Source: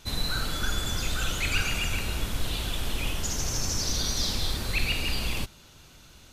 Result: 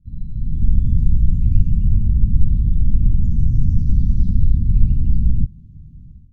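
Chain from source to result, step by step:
inverse Chebyshev low-pass filter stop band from 510 Hz, stop band 50 dB
automatic gain control gain up to 16 dB
level +2 dB

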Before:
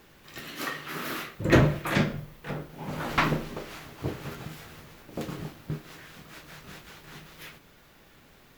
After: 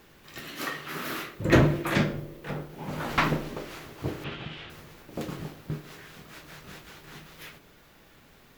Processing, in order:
0:04.24–0:04.70: low-pass with resonance 3,100 Hz, resonance Q 3.4
feedback echo with a band-pass in the loop 68 ms, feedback 79%, band-pass 400 Hz, level −13 dB

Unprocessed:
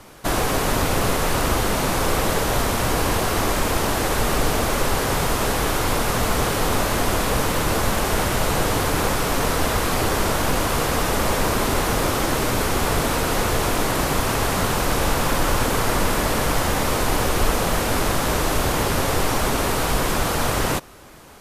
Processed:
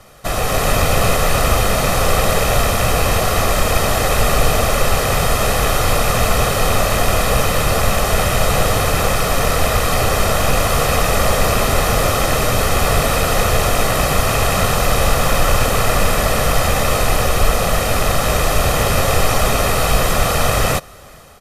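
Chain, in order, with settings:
loose part that buzzes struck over −24 dBFS, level −20 dBFS
automatic gain control gain up to 6 dB
comb filter 1.6 ms, depth 56%
level −1 dB

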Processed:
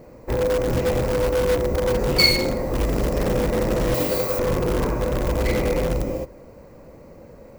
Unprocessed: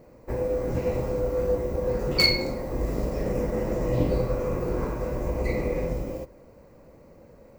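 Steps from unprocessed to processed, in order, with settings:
0:03.94–0:04.39: RIAA equalisation recording
in parallel at −8 dB: wrap-around overflow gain 21.5 dB
on the sum: level +4 dB

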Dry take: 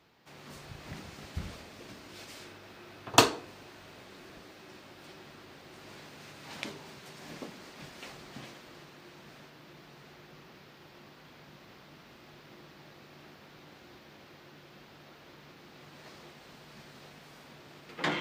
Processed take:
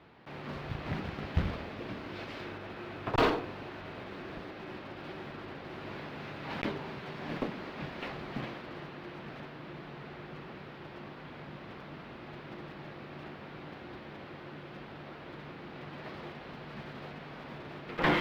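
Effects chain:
one scale factor per block 3 bits
tube saturation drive 30 dB, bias 0.55
high-frequency loss of the air 350 metres
level +12 dB

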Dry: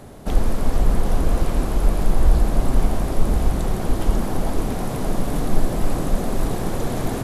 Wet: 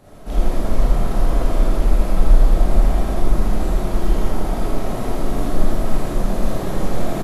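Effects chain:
parametric band 9,200 Hz −2 dB
on a send: loudspeakers that aren't time-aligned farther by 28 metres −4 dB, 65 metres −11 dB
on the sum: comb and all-pass reverb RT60 1.1 s, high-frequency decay 0.65×, pre-delay 0 ms, DRR −8 dB
level −9 dB

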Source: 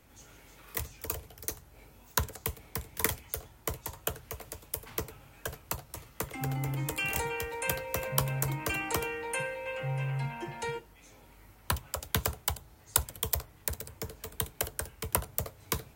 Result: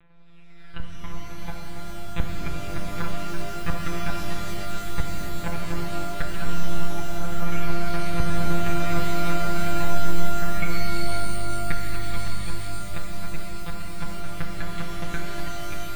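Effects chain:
pitch shifter gated in a rhythm +8 semitones, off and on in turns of 62 ms
automatic gain control gain up to 12 dB
treble cut that deepens with the level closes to 430 Hz, closed at −19.5 dBFS
full-wave rectification
parametric band 160 Hz −8.5 dB 2.9 octaves
phase shifter 0.18 Hz, delay 2.4 ms, feedback 57%
thirty-one-band graphic EQ 500 Hz −12 dB, 1,000 Hz −7 dB, 3,150 Hz −8 dB
one-pitch LPC vocoder at 8 kHz 170 Hz
reverb with rising layers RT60 4 s, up +12 semitones, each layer −2 dB, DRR 0.5 dB

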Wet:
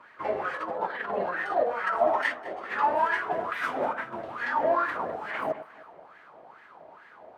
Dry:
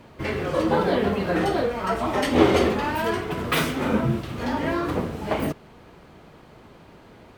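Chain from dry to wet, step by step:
high-shelf EQ 7,500 Hz +10 dB
compressor whose output falls as the input rises −24 dBFS, ratio −0.5
LFO wah 2.3 Hz 620–1,800 Hz, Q 5.4
on a send: delay that swaps between a low-pass and a high-pass 102 ms, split 1,300 Hz, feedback 59%, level −13 dB
on the sum: level +8 dB

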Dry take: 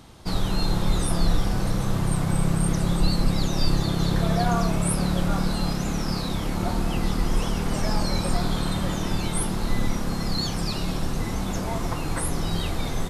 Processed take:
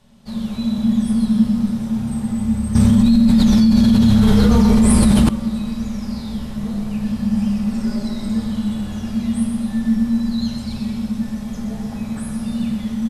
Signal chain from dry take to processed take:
low-shelf EQ 71 Hz +9.5 dB
repeating echo 126 ms, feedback 51%, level −7 dB
frequency shifter −240 Hz
convolution reverb RT60 1.0 s, pre-delay 3 ms, DRR −1 dB
0:02.75–0:05.29: envelope flattener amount 100%
level −10 dB

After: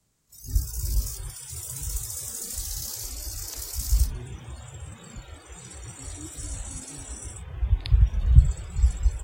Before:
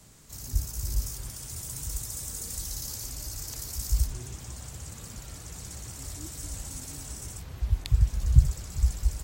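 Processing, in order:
echo ahead of the sound 53 ms −16.5 dB
noise reduction from a noise print of the clip's start 20 dB
level +3 dB

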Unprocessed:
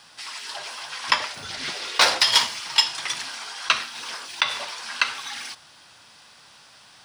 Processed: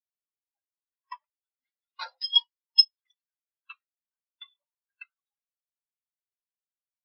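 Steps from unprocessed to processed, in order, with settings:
every bin expanded away from the loudest bin 4 to 1
level −2.5 dB

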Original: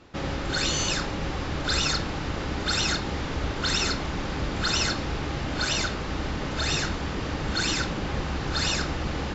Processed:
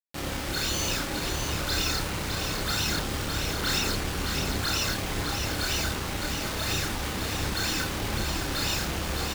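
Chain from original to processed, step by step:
bit reduction 5 bits
hum removal 68.22 Hz, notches 29
multi-voice chorus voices 2, 0.67 Hz, delay 29 ms, depth 2 ms
on a send: single-tap delay 610 ms −6 dB

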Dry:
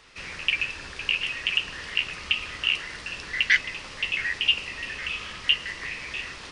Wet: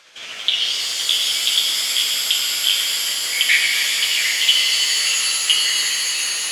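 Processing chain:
pitch glide at a constant tempo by +4 semitones ending unshifted
meter weighting curve A
reverb with rising layers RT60 3.7 s, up +7 semitones, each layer −2 dB, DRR −0.5 dB
level +4.5 dB

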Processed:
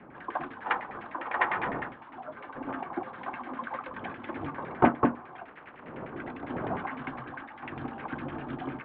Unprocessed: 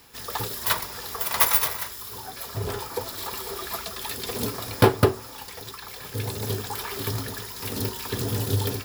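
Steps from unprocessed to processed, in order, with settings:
0:05.47–0:06.08: ceiling on every frequency bin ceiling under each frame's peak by 28 dB
wind on the microphone 470 Hz −39 dBFS
auto-filter low-pass saw down 9.9 Hz 980–2,300 Hz
single-sideband voice off tune −140 Hz 280–3,200 Hz
level −5 dB

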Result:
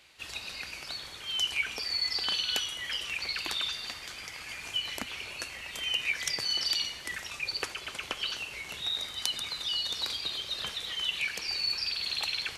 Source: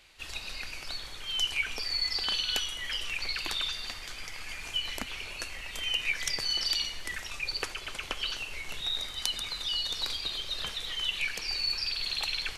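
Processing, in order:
high-pass filter 80 Hz 12 dB per octave

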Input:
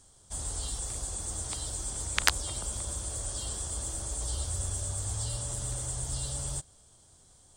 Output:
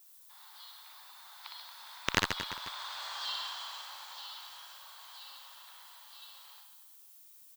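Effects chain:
source passing by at 0:03.12, 16 m/s, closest 7 metres
elliptic band-pass filter 930–4,200 Hz, stop band 50 dB
asymmetric clip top −34 dBFS
background noise violet −68 dBFS
on a send: reverse bouncing-ball delay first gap 60 ms, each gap 1.25×, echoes 5
on the sum: level +9 dB

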